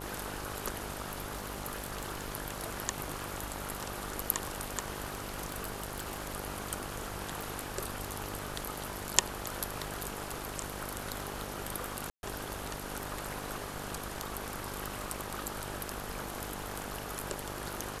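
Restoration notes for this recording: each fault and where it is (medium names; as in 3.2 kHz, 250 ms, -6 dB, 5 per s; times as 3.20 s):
buzz 50 Hz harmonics 20 -44 dBFS
crackle 40 per s -45 dBFS
1.06–2.26 s: clipped -31 dBFS
5.04–6.30 s: clipped -30.5 dBFS
7.41 s: pop
12.10–12.23 s: dropout 131 ms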